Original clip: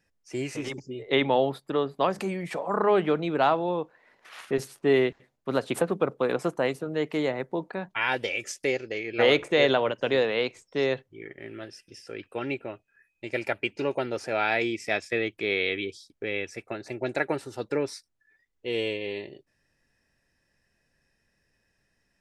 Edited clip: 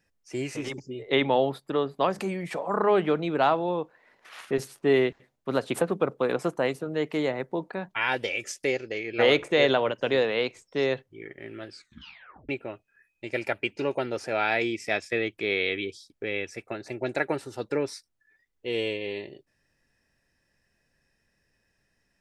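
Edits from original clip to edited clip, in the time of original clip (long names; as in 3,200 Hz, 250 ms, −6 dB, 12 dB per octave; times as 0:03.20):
0:11.67: tape stop 0.82 s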